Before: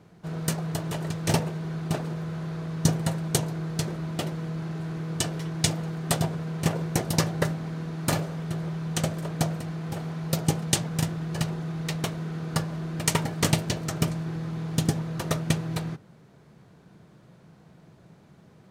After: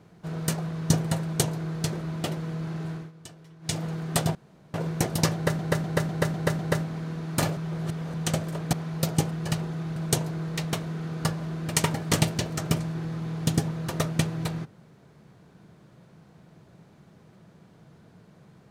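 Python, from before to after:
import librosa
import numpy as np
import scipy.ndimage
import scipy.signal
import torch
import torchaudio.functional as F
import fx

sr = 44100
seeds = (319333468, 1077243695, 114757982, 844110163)

y = fx.edit(x, sr, fx.cut(start_s=0.69, length_s=1.95),
    fx.duplicate(start_s=3.18, length_s=0.58, to_s=11.85),
    fx.fade_down_up(start_s=4.85, length_s=0.93, db=-18.0, fade_s=0.22),
    fx.room_tone_fill(start_s=6.3, length_s=0.39),
    fx.repeat(start_s=7.29, length_s=0.25, count=6),
    fx.reverse_span(start_s=8.27, length_s=0.57),
    fx.cut(start_s=9.43, length_s=0.6),
    fx.cut(start_s=10.61, length_s=0.59), tone=tone)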